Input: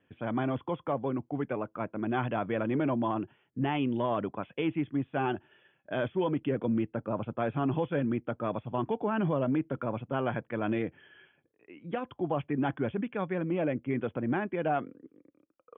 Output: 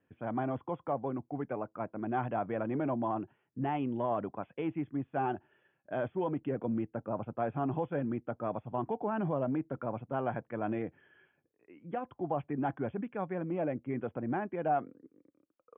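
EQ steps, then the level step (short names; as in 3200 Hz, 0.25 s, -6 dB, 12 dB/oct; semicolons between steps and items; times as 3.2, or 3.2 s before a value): LPF 2100 Hz 12 dB/oct; dynamic EQ 750 Hz, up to +6 dB, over -46 dBFS, Q 2.7; air absorption 74 m; -4.5 dB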